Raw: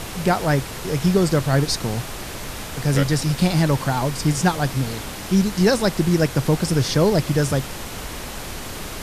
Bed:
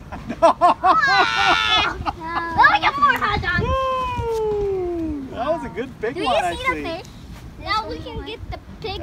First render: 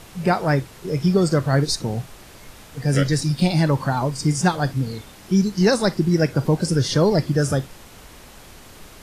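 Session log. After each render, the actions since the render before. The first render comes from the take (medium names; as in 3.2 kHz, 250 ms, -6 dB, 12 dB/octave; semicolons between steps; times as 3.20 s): noise print and reduce 12 dB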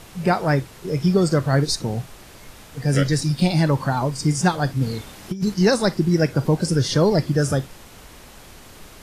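4.81–5.54 s: compressor with a negative ratio -21 dBFS, ratio -0.5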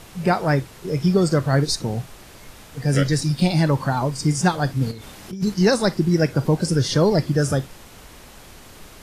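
4.91–5.33 s: compression, threshold -32 dBFS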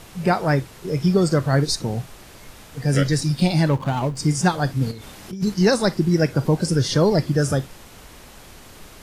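3.69–4.17 s: median filter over 25 samples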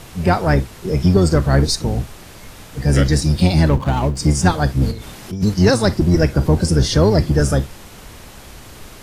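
octave divider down 1 oct, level -1 dB; in parallel at -4 dB: saturation -16 dBFS, distortion -11 dB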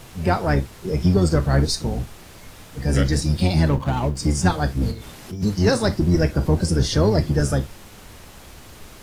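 flange 0.27 Hz, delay 7.8 ms, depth 6.1 ms, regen -65%; bit crusher 10-bit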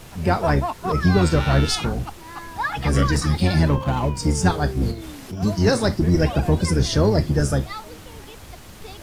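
add bed -12.5 dB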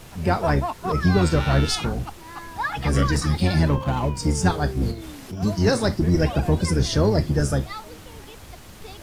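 trim -1.5 dB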